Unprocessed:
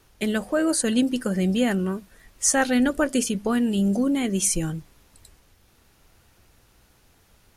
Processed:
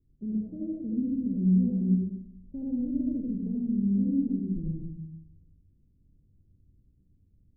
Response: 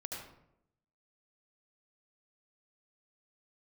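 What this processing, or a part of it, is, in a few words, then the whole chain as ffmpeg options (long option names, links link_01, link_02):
next room: -filter_complex "[0:a]lowpass=frequency=270:width=0.5412,lowpass=frequency=270:width=1.3066[link_01];[1:a]atrim=start_sample=2205[link_02];[link_01][link_02]afir=irnorm=-1:irlink=0,volume=-2.5dB"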